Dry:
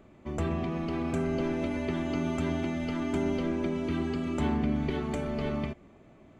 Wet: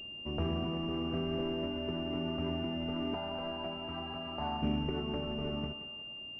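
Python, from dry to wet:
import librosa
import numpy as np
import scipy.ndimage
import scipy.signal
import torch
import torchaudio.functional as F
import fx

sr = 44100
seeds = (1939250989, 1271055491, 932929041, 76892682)

p1 = fx.low_shelf_res(x, sr, hz=540.0, db=-8.5, q=3.0, at=(3.14, 4.62))
p2 = fx.rider(p1, sr, range_db=4, speed_s=2.0)
p3 = p2 + fx.echo_thinned(p2, sr, ms=176, feedback_pct=58, hz=410.0, wet_db=-9.5, dry=0)
p4 = fx.pwm(p3, sr, carrier_hz=2800.0)
y = p4 * 10.0 ** (-4.5 / 20.0)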